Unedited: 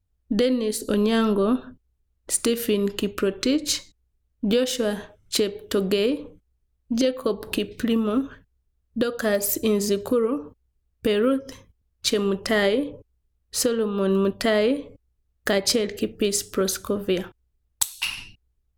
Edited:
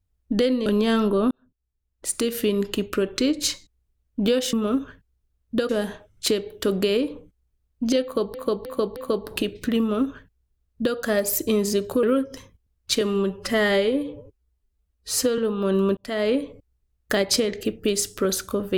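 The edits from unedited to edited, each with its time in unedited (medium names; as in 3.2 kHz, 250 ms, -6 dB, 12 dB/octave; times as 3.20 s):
0.66–0.91 s: delete
1.56–2.73 s: fade in
7.12–7.43 s: loop, 4 plays
7.96–9.12 s: copy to 4.78 s
10.19–11.18 s: delete
12.16–13.74 s: stretch 1.5×
14.33–14.69 s: fade in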